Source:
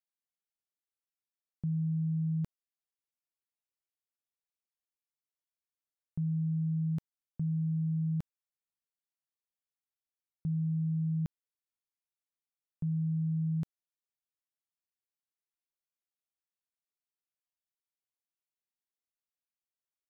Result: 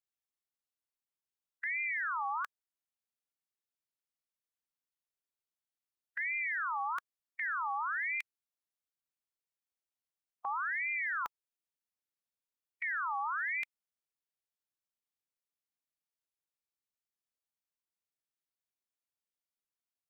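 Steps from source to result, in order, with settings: spectral peaks clipped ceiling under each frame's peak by 12 dB; ring modulator with a swept carrier 1.6 kHz, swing 40%, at 1.1 Hz

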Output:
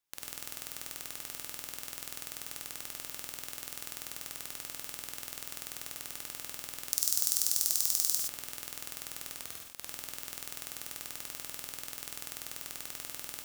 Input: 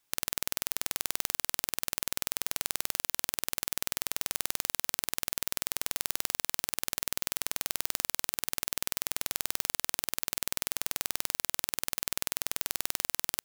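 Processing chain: 6.90–8.19 s: resonant high shelf 3.7 kHz +13 dB, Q 1.5; 9.35–9.77 s: ring modulator 650 Hz; gated-style reverb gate 140 ms rising, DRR 0.5 dB; trim -11 dB

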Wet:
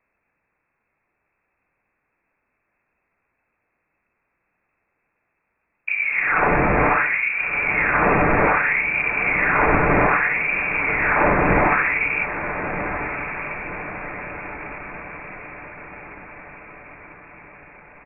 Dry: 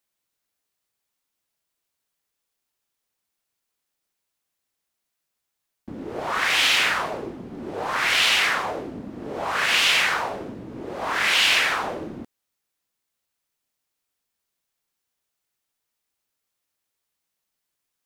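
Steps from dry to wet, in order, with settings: bass shelf 420 Hz +10.5 dB; comb 7 ms, depth 38%; added noise white -70 dBFS; on a send: echo that smears into a reverb 1314 ms, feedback 55%, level -9 dB; on the sum: frequency inversion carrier 2.6 kHz; trim +4 dB

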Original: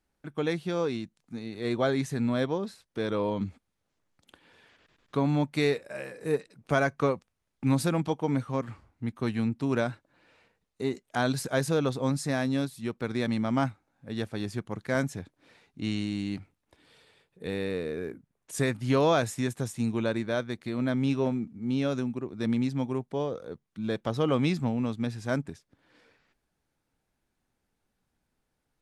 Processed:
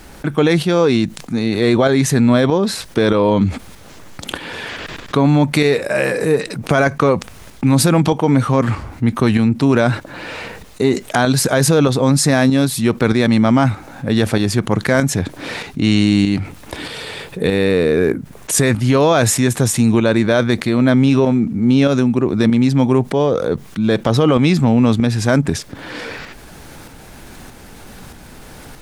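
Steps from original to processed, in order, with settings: tremolo saw up 1.6 Hz, depth 60%; loudness maximiser +22.5 dB; level flattener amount 50%; trim -4.5 dB

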